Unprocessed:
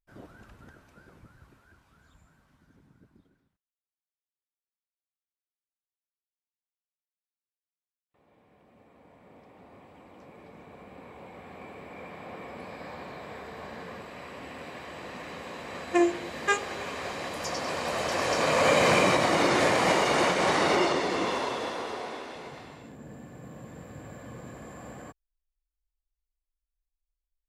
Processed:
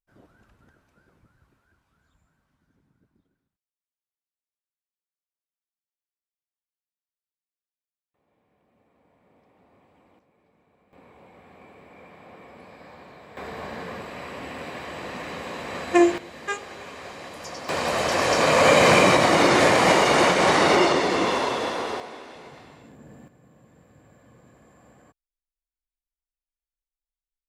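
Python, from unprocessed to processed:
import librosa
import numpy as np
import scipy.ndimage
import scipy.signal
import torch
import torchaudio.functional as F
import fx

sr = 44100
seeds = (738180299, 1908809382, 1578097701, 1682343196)

y = fx.gain(x, sr, db=fx.steps((0.0, -7.5), (10.19, -16.0), (10.93, -5.0), (13.37, 6.0), (16.18, -4.0), (17.69, 6.0), (22.0, -2.0), (23.28, -11.0)))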